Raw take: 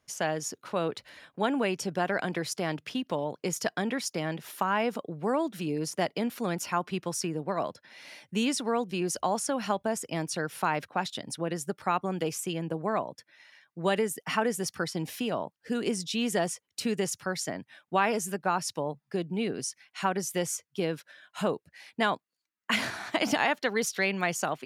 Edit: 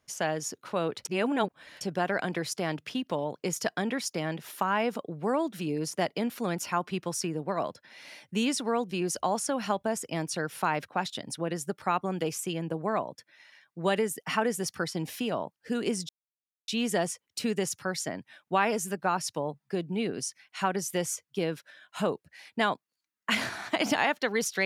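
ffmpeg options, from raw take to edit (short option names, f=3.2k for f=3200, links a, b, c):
-filter_complex "[0:a]asplit=4[a][b][c][d];[a]atrim=end=1.052[e];[b]atrim=start=1.048:end=1.812,asetpts=PTS-STARTPTS,areverse[f];[c]atrim=start=1.808:end=16.09,asetpts=PTS-STARTPTS,afade=t=out:st=14.278:d=0.004:c=hsin,apad=pad_dur=0.59[g];[d]atrim=start=16.09,asetpts=PTS-STARTPTS,afade=t=in:d=0.004:c=hsin[h];[e][f]acrossfade=d=0.004:c1=hsin:c2=hsin[i];[g][h]concat=n=2:v=0:a=1[j];[i][j]acrossfade=d=0.004:c1=hsin:c2=hsin"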